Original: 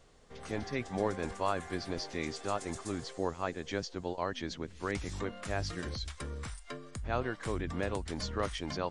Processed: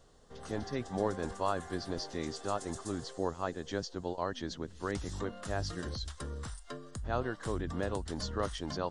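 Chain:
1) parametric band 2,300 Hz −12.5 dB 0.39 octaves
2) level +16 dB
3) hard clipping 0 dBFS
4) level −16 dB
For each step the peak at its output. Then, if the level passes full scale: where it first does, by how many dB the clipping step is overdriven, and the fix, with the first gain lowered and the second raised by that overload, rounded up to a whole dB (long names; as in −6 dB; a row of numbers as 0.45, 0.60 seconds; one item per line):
−17.5, −1.5, −1.5, −17.5 dBFS
no step passes full scale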